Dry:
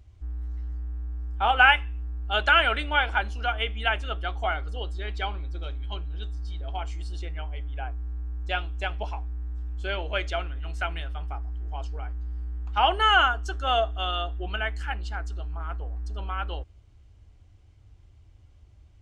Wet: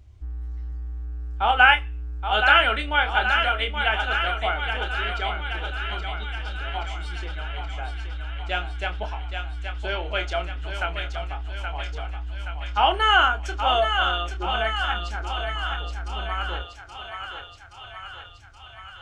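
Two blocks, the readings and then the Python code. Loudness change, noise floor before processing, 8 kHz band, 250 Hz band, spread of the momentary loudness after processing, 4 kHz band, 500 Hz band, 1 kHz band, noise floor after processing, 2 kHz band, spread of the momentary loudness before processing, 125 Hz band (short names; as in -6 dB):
+3.0 dB, -54 dBFS, n/a, +2.5 dB, 17 LU, +4.0 dB, +3.0 dB, +3.5 dB, -45 dBFS, +3.5 dB, 15 LU, +1.0 dB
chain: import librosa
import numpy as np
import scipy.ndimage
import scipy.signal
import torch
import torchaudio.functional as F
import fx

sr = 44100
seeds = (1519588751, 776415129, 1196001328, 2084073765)

y = fx.doubler(x, sr, ms=28.0, db=-8.5)
y = fx.echo_thinned(y, sr, ms=824, feedback_pct=69, hz=540.0, wet_db=-5.5)
y = y * librosa.db_to_amplitude(1.5)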